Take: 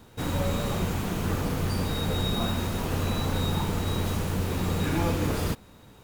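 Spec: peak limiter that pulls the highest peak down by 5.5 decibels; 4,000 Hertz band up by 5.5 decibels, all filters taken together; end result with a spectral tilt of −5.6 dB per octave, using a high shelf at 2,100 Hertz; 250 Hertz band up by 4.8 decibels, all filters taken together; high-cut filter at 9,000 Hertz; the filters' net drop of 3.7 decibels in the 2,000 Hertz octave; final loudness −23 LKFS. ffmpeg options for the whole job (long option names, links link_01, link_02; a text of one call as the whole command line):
ffmpeg -i in.wav -af "lowpass=9000,equalizer=frequency=250:width_type=o:gain=6.5,equalizer=frequency=2000:width_type=o:gain=-9,highshelf=frequency=2100:gain=4,equalizer=frequency=4000:width_type=o:gain=5,volume=4dB,alimiter=limit=-13dB:level=0:latency=1" out.wav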